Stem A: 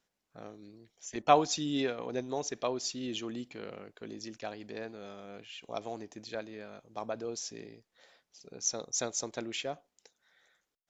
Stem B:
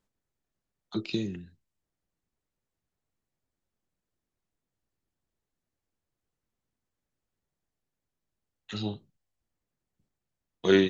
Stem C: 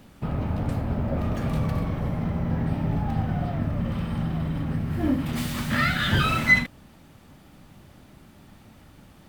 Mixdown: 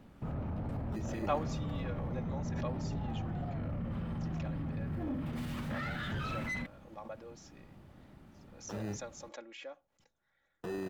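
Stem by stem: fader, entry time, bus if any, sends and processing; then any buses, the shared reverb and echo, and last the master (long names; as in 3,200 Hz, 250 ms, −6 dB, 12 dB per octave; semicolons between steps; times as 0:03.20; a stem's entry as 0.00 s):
−9.5 dB, 0.00 s, no bus, no send, three-way crossover with the lows and the highs turned down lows −15 dB, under 390 Hz, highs −12 dB, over 2,500 Hz; comb filter 3.6 ms, depth 83%; background raised ahead of every attack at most 110 dB per second
+0.5 dB, 0.00 s, bus A, no send, decimation without filtering 20×
−5.5 dB, 0.00 s, bus A, no send, soft clipping −19.5 dBFS, distortion −13 dB
bus A: 0.0 dB, high-shelf EQ 2,700 Hz −11.5 dB; brickwall limiter −31.5 dBFS, peak gain reduction 21 dB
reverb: not used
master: no processing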